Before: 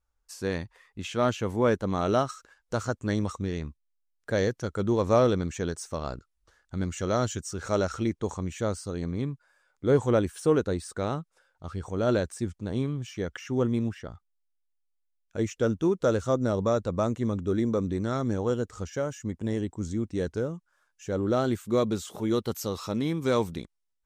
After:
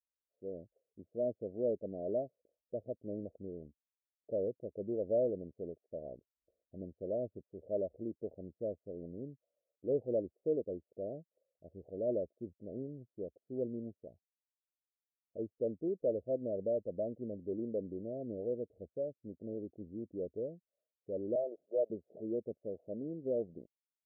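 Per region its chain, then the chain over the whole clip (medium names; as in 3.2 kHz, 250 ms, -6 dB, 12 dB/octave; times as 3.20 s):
21.35–21.90 s: high-pass 540 Hz 24 dB/octave + waveshaping leveller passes 2
whole clip: level rider gain up to 9 dB; steep low-pass 650 Hz 96 dB/octave; differentiator; trim +6.5 dB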